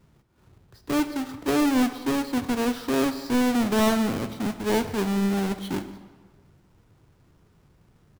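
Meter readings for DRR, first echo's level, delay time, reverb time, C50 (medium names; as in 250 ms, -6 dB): 10.0 dB, -21.5 dB, 147 ms, 1.4 s, 11.0 dB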